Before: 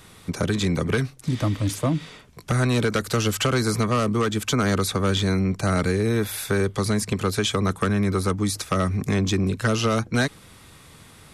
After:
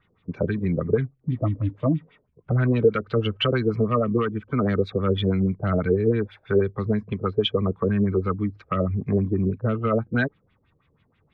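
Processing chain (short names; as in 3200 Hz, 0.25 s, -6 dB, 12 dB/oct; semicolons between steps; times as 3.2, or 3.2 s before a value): LFO low-pass sine 6.2 Hz 440–3200 Hz; spectral expander 1.5:1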